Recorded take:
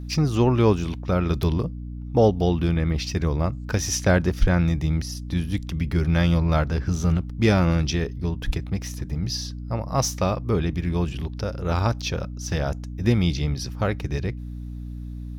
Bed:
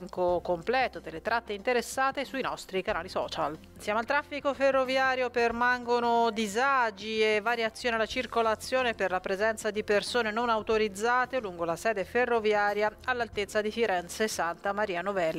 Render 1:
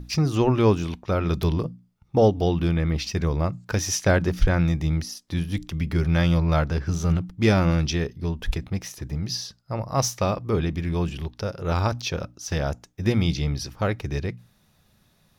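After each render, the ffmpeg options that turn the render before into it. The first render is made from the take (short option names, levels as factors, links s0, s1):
-af "bandreject=f=60:t=h:w=6,bandreject=f=120:t=h:w=6,bandreject=f=180:t=h:w=6,bandreject=f=240:t=h:w=6,bandreject=f=300:t=h:w=6"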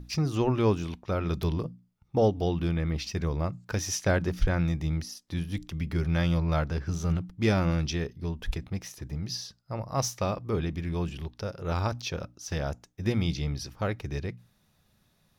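-af "volume=0.531"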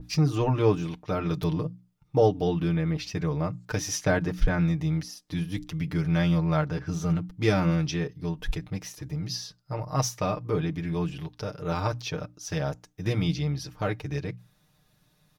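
-af "aecho=1:1:6.6:0.79,adynamicequalizer=threshold=0.00562:dfrequency=2900:dqfactor=0.7:tfrequency=2900:tqfactor=0.7:attack=5:release=100:ratio=0.375:range=2.5:mode=cutabove:tftype=highshelf"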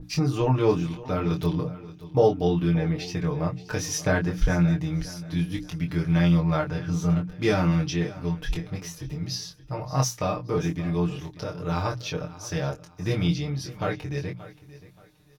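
-filter_complex "[0:a]asplit=2[s0][s1];[s1]adelay=23,volume=0.631[s2];[s0][s2]amix=inputs=2:normalize=0,aecho=1:1:577|1154|1731:0.141|0.041|0.0119"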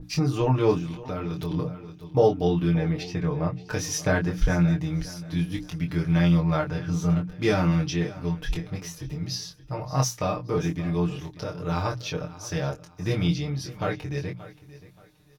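-filter_complex "[0:a]asettb=1/sr,asplit=3[s0][s1][s2];[s0]atrim=end=0.784[s3];[s1]atrim=start=0.78:end=1.51,asetpts=PTS-STARTPTS,afade=t=in:d=0.004:c=qsin,afade=t=out:st=0.726:d=0.004:c=qsin,acompressor=threshold=0.0398:ratio=3:attack=3.2:release=140:knee=1:detection=peak[s4];[s2]atrim=start=1.506[s5];[s3][s4]acrossfade=d=0.004:c1=hsin:c2=qsin[s6];[s6][s5]acrossfade=d=0.004:c1=qsin:c2=hsin,asettb=1/sr,asplit=3[s7][s8][s9];[s7]atrim=end=3.034[s10];[s8]atrim=start=3.03:end=3.7,asetpts=PTS-STARTPTS,afade=t=in:d=0.004:c=qsin,afade=t=out:st=0.666:d=0.004:c=qsin,aemphasis=mode=reproduction:type=cd[s11];[s9]atrim=start=3.696[s12];[s10][s11]acrossfade=d=0.004:c1=hsin:c2=qsin[s13];[s13][s12]acrossfade=d=0.004:c1=qsin:c2=hsin,asettb=1/sr,asplit=3[s14][s15][s16];[s14]atrim=end=4.814[s17];[s15]atrim=start=4.81:end=5.79,asetpts=PTS-STARTPTS,afade=t=in:d=0.004:c=qsin,afade=t=out:st=0.976:d=0.004:c=qsin,aeval=exprs='sgn(val(0))*max(abs(val(0))-0.001,0)':c=same[s18];[s16]atrim=start=5.786[s19];[s17][s18]acrossfade=d=0.004:c1=hsin:c2=qsin[s20];[s20][s19]acrossfade=d=0.004:c1=qsin:c2=hsin"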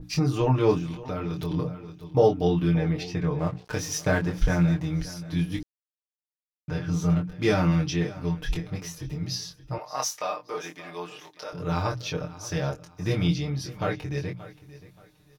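-filter_complex "[0:a]asettb=1/sr,asplit=3[s0][s1][s2];[s0]atrim=end=3.394[s3];[s1]atrim=start=3.39:end=4.86,asetpts=PTS-STARTPTS,afade=t=in:d=0.004:c=qsin,afade=t=out:st=1.466:d=0.004:c=qsin,aeval=exprs='sgn(val(0))*max(abs(val(0))-0.00708,0)':c=same[s4];[s2]atrim=start=4.856[s5];[s3][s4]acrossfade=d=0.004:c1=hsin:c2=qsin[s6];[s6][s5]acrossfade=d=0.004:c1=qsin:c2=hsin,asettb=1/sr,asplit=3[s7][s8][s9];[s7]atrim=end=9.784[s10];[s8]atrim=start=9.78:end=11.53,asetpts=PTS-STARTPTS,afade=t=in:d=0.004:c=qsin,afade=t=out:st=1.746:d=0.004:c=qsin,highpass=620[s11];[s9]atrim=start=11.526[s12];[s10][s11]acrossfade=d=0.004:c1=hsin:c2=qsin[s13];[s13][s12]acrossfade=d=0.004:c1=qsin:c2=hsin,asplit=3[s14][s15][s16];[s14]atrim=end=5.63,asetpts=PTS-STARTPTS,afade=t=out:st=5.626:d=0.004:c=hsin[s17];[s15]atrim=start=5.63:end=6.68,asetpts=PTS-STARTPTS,volume=0[s18];[s16]atrim=start=6.68,asetpts=PTS-STARTPTS,afade=t=in:d=0.004:c=hsin[s19];[s17][s18][s19]concat=n=3:v=0:a=1"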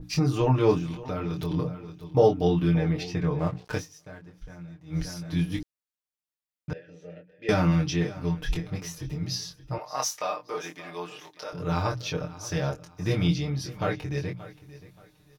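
-filter_complex "[0:a]asettb=1/sr,asplit=3[s0][s1][s2];[s0]atrim=end=6.734[s3];[s1]atrim=start=6.73:end=7.49,asetpts=PTS-STARTPTS,afade=t=in:d=0.004:c=qsin,afade=t=out:st=0.756:d=0.004:c=qsin,asplit=3[s4][s5][s6];[s4]bandpass=f=530:t=q:w=8,volume=1[s7];[s5]bandpass=f=1840:t=q:w=8,volume=0.501[s8];[s6]bandpass=f=2480:t=q:w=8,volume=0.355[s9];[s7][s8][s9]amix=inputs=3:normalize=0[s10];[s2]atrim=start=7.486[s11];[s3][s10]acrossfade=d=0.004:c1=hsin:c2=qsin[s12];[s12][s11]acrossfade=d=0.004:c1=qsin:c2=hsin,asplit=3[s13][s14][s15];[s13]atrim=end=3.9,asetpts=PTS-STARTPTS,afade=t=out:st=3.77:d=0.13:c=qua:silence=0.0891251[s16];[s14]atrim=start=3.9:end=4.84,asetpts=PTS-STARTPTS,volume=0.0891[s17];[s15]atrim=start=4.84,asetpts=PTS-STARTPTS,afade=t=in:d=0.13:c=qua:silence=0.0891251[s18];[s16][s17][s18]concat=n=3:v=0:a=1"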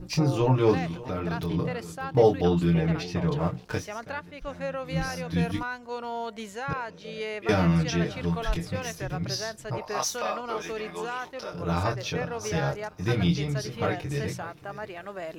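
-filter_complex "[1:a]volume=0.398[s0];[0:a][s0]amix=inputs=2:normalize=0"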